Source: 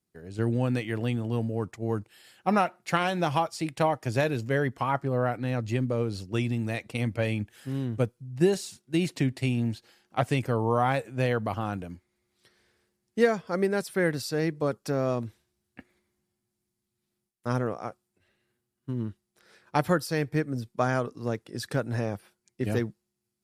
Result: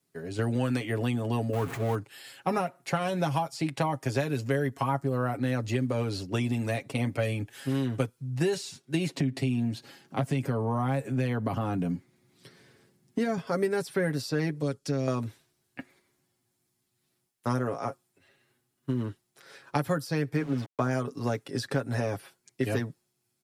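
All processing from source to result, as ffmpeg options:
-filter_complex "[0:a]asettb=1/sr,asplit=3[s0][s1][s2];[s0]atrim=end=1.534[s3];[s1]atrim=start=1.53:end=1.95,asetpts=PTS-STARTPTS,afade=t=in:d=0.004:c=qsin,afade=t=out:st=0.416:d=0.004:c=qsin,aeval=exprs='val(0)+0.5*0.0168*sgn(val(0))':c=same,equalizer=f=4900:w=1.1:g=-7,asplit=2[s4][s5];[s5]adelay=19,volume=0.224[s6];[s4][s6]amix=inputs=2:normalize=0,atrim=end_sample=18522[s7];[s2]atrim=start=1.946[s8];[s3][s7]acrossfade=d=0.004:c1=hsin:c2=qsin[s9];[s9][s8]acrossfade=d=0.004:c1=qsin:c2=hsin,asettb=1/sr,asplit=3[s10][s11][s12];[s10]atrim=end=9.194[s13];[s11]atrim=start=9.19:end=13.38,asetpts=PTS-STARTPTS,afade=t=in:d=0.004:c=qsin,afade=t=out:st=4.186:d=0.004:c=qsin,equalizer=f=170:w=0.7:g=14.5,acompressor=threshold=0.0282:ratio=2:attack=3.2:release=140:knee=1:detection=peak[s14];[s12]atrim=start=13.376[s15];[s13][s14]acrossfade=d=0.004:c1=hsin:c2=qsin[s16];[s16][s15]acrossfade=d=0.004:c1=qsin:c2=hsin,asettb=1/sr,asplit=3[s17][s18][s19];[s17]atrim=end=14.614[s20];[s18]atrim=start=14.61:end=15.08,asetpts=PTS-STARTPTS,afade=t=in:d=0.004:c=qsin,afade=t=out:st=0.466:d=0.004:c=qsin,lowpass=9300,equalizer=f=1000:t=o:w=2.6:g=-14.5[s21];[s19]atrim=start=15.076[s22];[s20][s21]acrossfade=d=0.004:c1=hsin:c2=qsin[s23];[s23][s22]acrossfade=d=0.004:c1=qsin:c2=hsin,asettb=1/sr,asplit=3[s24][s25][s26];[s24]atrim=end=20.364[s27];[s25]atrim=start=20.36:end=20.91,asetpts=PTS-STARTPTS,afade=t=in:d=0.004:c=qsin,afade=t=out:st=0.546:d=0.004:c=qsin,bandreject=f=50:t=h:w=6,bandreject=f=100:t=h:w=6,bandreject=f=150:t=h:w=6,aeval=exprs='val(0)*gte(abs(val(0)),0.00891)':c=same,aemphasis=mode=reproduction:type=75fm[s28];[s26]atrim=start=20.906[s29];[s27][s28]acrossfade=d=0.004:c1=hsin:c2=qsin[s30];[s30][s29]acrossfade=d=0.004:c1=qsin:c2=hsin,lowshelf=f=93:g=-10.5,aecho=1:1:7.3:0.65,acrossover=split=270|970|6300[s31][s32][s33][s34];[s31]acompressor=threshold=0.0158:ratio=4[s35];[s32]acompressor=threshold=0.0141:ratio=4[s36];[s33]acompressor=threshold=0.00631:ratio=4[s37];[s34]acompressor=threshold=0.00158:ratio=4[s38];[s35][s36][s37][s38]amix=inputs=4:normalize=0,volume=2"

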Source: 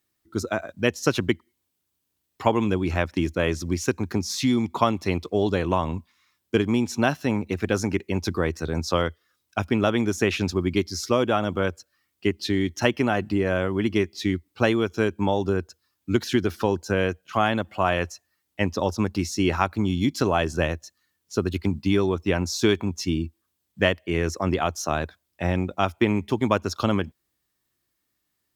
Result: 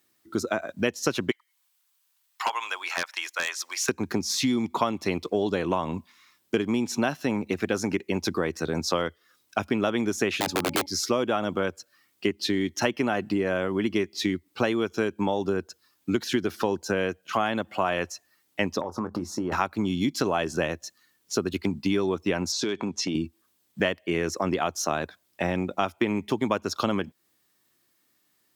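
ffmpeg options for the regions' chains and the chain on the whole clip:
-filter_complex "[0:a]asettb=1/sr,asplit=3[s0][s1][s2];[s0]atrim=end=1.314[s3];[s1]atrim=start=1.31:end=3.89,asetpts=PTS-STARTPTS,afade=t=in:d=0.004:c=qsin,afade=t=out:st=2.576:d=0.004:c=qsin,highpass=f=900:w=0.5412,highpass=f=900:w=1.3066,aeval=exprs='0.112*(abs(mod(val(0)/0.112+3,4)-2)-1)':c=same[s4];[s2]atrim=start=3.886[s5];[s3][s4]acrossfade=d=0.004:c1=hsin:c2=qsin[s6];[s6][s5]acrossfade=d=0.004:c1=qsin:c2=hsin,asettb=1/sr,asplit=3[s7][s8][s9];[s7]atrim=end=10.334[s10];[s8]atrim=start=10.33:end=10.86,asetpts=PTS-STARTPTS,afade=t=in:d=0.004:c=qsin,afade=t=out:st=0.526:d=0.004:c=qsin,aeval=exprs='(mod(7.08*val(0)+1,2)-1)/7.08':c=same,bandreject=f=5600:w=14,bandreject=f=282.7:t=h:w=4,bandreject=f=565.4:t=h:w=4,bandreject=f=848.1:t=h:w=4[s11];[s9]atrim=start=10.856[s12];[s10][s11]acrossfade=d=0.004:c1=hsin:c2=qsin[s13];[s13][s12]acrossfade=d=0.004:c1=qsin:c2=hsin,asettb=1/sr,asplit=3[s14][s15][s16];[s14]atrim=end=18.814[s17];[s15]atrim=start=18.81:end=19.52,asetpts=PTS-STARTPTS,afade=t=in:d=0.004:c=qsin,afade=t=out:st=0.706:d=0.004:c=qsin,highshelf=f=1700:t=q:w=3:g=-12,acompressor=threshold=0.0355:ratio=5:attack=3.2:release=140:knee=1:detection=peak,asplit=2[s18][s19];[s19]adelay=23,volume=0.251[s20];[s18][s20]amix=inputs=2:normalize=0,atrim=end_sample=31311[s21];[s16]atrim=start=19.516[s22];[s17][s21]acrossfade=d=0.004:c1=hsin:c2=qsin[s23];[s23][s22]acrossfade=d=0.004:c1=qsin:c2=hsin,asettb=1/sr,asplit=3[s24][s25][s26];[s24]atrim=end=22.524[s27];[s25]atrim=start=22.52:end=23.15,asetpts=PTS-STARTPTS,afade=t=in:d=0.004:c=qsin,afade=t=out:st=0.626:d=0.004:c=qsin,acompressor=threshold=0.0501:ratio=4:attack=3.2:release=140:knee=1:detection=peak,volume=10.6,asoftclip=hard,volume=0.0944,highpass=140,lowpass=6600[s28];[s26]atrim=start=23.146[s29];[s27][s28]acrossfade=d=0.004:c1=hsin:c2=qsin[s30];[s30][s29]acrossfade=d=0.004:c1=qsin:c2=hsin,highpass=160,acompressor=threshold=0.02:ratio=2.5,volume=2.37"

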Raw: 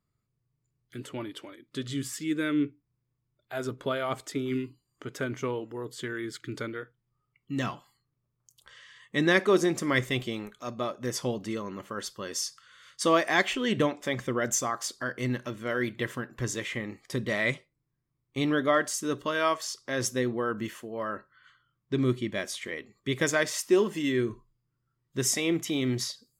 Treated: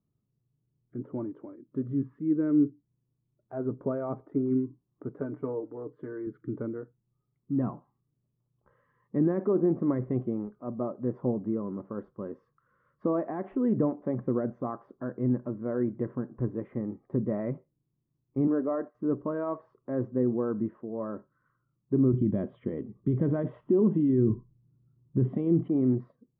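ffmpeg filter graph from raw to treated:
-filter_complex "[0:a]asettb=1/sr,asplit=3[s0][s1][s2];[s0]atrim=end=5.204[s3];[s1]atrim=start=5.2:end=6.27,asetpts=PTS-STARTPTS,afade=t=in:d=0.004:c=qsin,afade=t=out:st=1.066:d=0.004:c=qsin,highpass=f=340:p=1,aecho=1:1:6.7:0.61,atrim=end_sample=47187[s4];[s2]atrim=start=6.266[s5];[s3][s4]acrossfade=d=0.004:c1=hsin:c2=qsin[s6];[s6][s5]acrossfade=d=0.004:c1=qsin:c2=hsin,asettb=1/sr,asplit=3[s7][s8][s9];[s7]atrim=end=18.474[s10];[s8]atrim=start=18.47:end=18.95,asetpts=PTS-STARTPTS,afade=t=in:d=0.004:c=qsin,afade=t=out:st=0.476:d=0.004:c=qsin,highpass=290,lowpass=2700,agate=range=0.0224:threshold=0.00891:ratio=3:release=100:detection=peak[s11];[s9]atrim=start=18.946[s12];[s10][s11]acrossfade=d=0.004:c1=hsin:c2=qsin[s13];[s13][s12]acrossfade=d=0.004:c1=qsin:c2=hsin,asettb=1/sr,asplit=3[s14][s15][s16];[s14]atrim=end=22.134[s17];[s15]atrim=start=22.13:end=25.68,asetpts=PTS-STARTPTS,afade=t=in:d=0.004:c=qsin,afade=t=out:st=3.546:d=0.004:c=qsin,lowpass=f=3200:t=q:w=9.6,equalizer=f=93:w=0.32:g=13.5[s18];[s16]atrim=start=25.676[s19];[s17][s18]acrossfade=d=0.004:c1=hsin:c2=qsin[s20];[s20][s19]acrossfade=d=0.004:c1=qsin:c2=hsin,alimiter=limit=0.126:level=0:latency=1:release=41,lowpass=f=1100:w=0.5412,lowpass=f=1100:w=1.3066,equalizer=f=220:t=o:w=2.5:g=11,volume=0.501"

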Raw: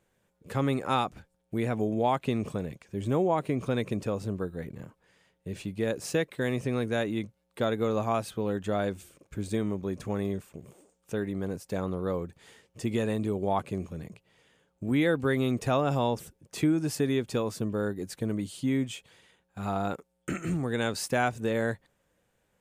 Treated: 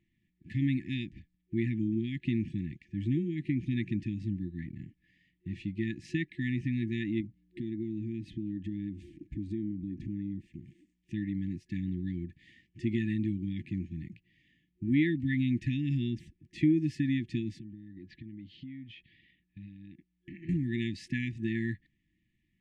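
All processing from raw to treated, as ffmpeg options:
-filter_complex "[0:a]asettb=1/sr,asplit=3[s0][s1][s2];[s0]atrim=end=7.204[s3];[s1]atrim=start=7.2:end=10.47,asetpts=PTS-STARTPTS,afade=t=in:d=0.004:c=qsin,afade=t=out:st=3.266:d=0.004:c=qsin,lowshelf=f=440:t=q:w=3:g=8.5,acompressor=threshold=0.0141:ratio=3:attack=3.2:release=140:knee=1:detection=peak[s4];[s2]atrim=start=10.466[s5];[s3][s4]acrossfade=d=0.004:c1=hsin:c2=qsin[s6];[s6][s5]acrossfade=d=0.004:c1=qsin:c2=hsin,asettb=1/sr,asplit=3[s7][s8][s9];[s7]atrim=end=17.594[s10];[s8]atrim=start=17.59:end=20.49,asetpts=PTS-STARTPTS,afade=t=in:d=0.004:c=qsin,afade=t=out:st=2.896:d=0.004:c=qsin,lowpass=f=4300:w=0.5412,lowpass=f=4300:w=1.3066,acompressor=threshold=0.00891:ratio=8:attack=3.2:release=140:knee=1:detection=peak[s11];[s9]atrim=start=20.486[s12];[s10][s11]acrossfade=d=0.004:c1=hsin:c2=qsin[s13];[s13][s12]acrossfade=d=0.004:c1=qsin:c2=hsin,afftfilt=real='re*(1-between(b*sr/4096,360,1700))':imag='im*(1-between(b*sr/4096,360,1700))':win_size=4096:overlap=0.75,lowpass=2500"

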